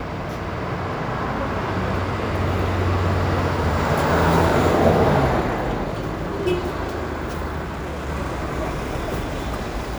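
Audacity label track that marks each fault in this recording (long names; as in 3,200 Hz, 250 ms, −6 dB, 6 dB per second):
7.630000	8.100000	clipping −25 dBFS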